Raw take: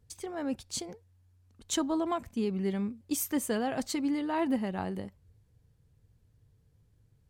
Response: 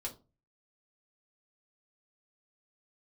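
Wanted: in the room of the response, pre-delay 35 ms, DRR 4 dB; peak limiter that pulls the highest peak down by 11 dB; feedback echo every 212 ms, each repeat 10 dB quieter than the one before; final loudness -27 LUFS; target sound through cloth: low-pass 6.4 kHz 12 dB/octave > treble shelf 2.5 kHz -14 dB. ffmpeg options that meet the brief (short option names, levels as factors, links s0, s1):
-filter_complex "[0:a]alimiter=level_in=1.68:limit=0.0631:level=0:latency=1,volume=0.596,aecho=1:1:212|424|636|848:0.316|0.101|0.0324|0.0104,asplit=2[s0][s1];[1:a]atrim=start_sample=2205,adelay=35[s2];[s1][s2]afir=irnorm=-1:irlink=0,volume=0.708[s3];[s0][s3]amix=inputs=2:normalize=0,lowpass=6400,highshelf=f=2500:g=-14,volume=2.82"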